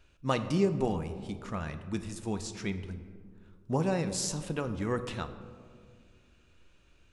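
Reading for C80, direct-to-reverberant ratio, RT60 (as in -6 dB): 12.5 dB, 8.5 dB, 2.0 s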